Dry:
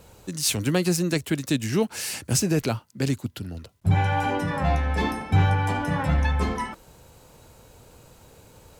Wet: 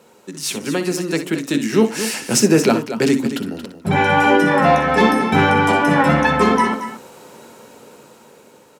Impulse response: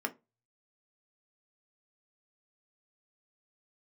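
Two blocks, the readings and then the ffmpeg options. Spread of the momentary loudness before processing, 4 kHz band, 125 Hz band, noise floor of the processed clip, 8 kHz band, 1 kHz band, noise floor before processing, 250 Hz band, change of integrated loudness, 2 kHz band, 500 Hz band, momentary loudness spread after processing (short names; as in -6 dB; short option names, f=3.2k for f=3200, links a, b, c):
9 LU, +6.5 dB, -0.5 dB, -49 dBFS, +5.0 dB, +12.0 dB, -53 dBFS, +9.5 dB, +8.5 dB, +12.5 dB, +12.0 dB, 11 LU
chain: -filter_complex "[0:a]highpass=190,highshelf=f=12k:g=-7,dynaudnorm=f=750:g=5:m=11.5dB,aecho=1:1:61.22|227.4:0.282|0.282,asplit=2[a][b];[1:a]atrim=start_sample=2205,lowshelf=f=290:g=8[c];[b][c]afir=irnorm=-1:irlink=0,volume=-6.5dB[d];[a][d]amix=inputs=2:normalize=0,volume=-2dB"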